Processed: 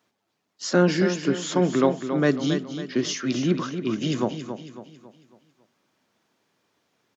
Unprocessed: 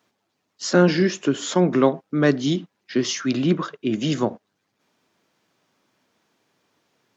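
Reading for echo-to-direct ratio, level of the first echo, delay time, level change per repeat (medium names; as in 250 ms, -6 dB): -8.0 dB, -9.0 dB, 275 ms, -7.5 dB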